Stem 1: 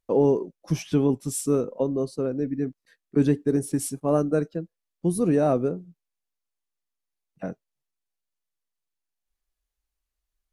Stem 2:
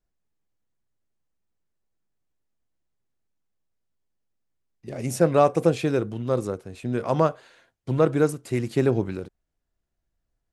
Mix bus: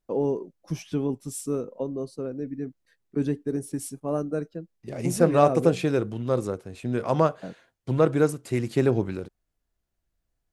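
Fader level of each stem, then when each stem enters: -5.5, -0.5 dB; 0.00, 0.00 s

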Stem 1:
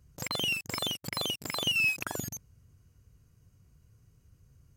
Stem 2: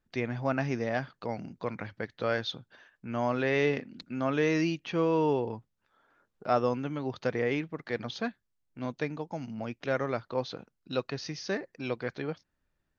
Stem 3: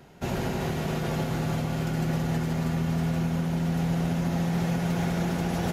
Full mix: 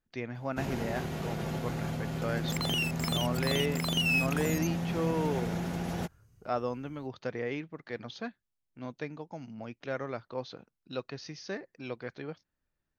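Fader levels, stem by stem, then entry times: -1.5, -5.5, -6.5 dB; 2.30, 0.00, 0.35 s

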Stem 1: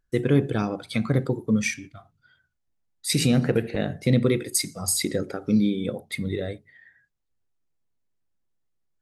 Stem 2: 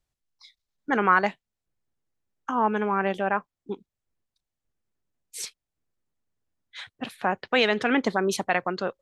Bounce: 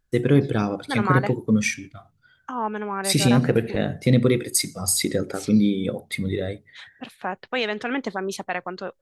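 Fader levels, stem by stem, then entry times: +2.5, -3.5 dB; 0.00, 0.00 s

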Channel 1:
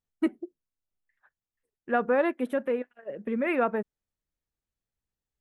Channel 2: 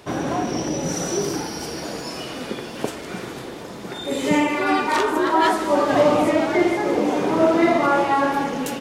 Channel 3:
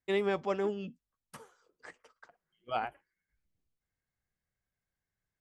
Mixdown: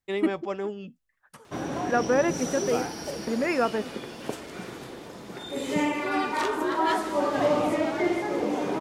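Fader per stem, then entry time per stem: +1.0, -7.0, +0.5 dB; 0.00, 1.45, 0.00 s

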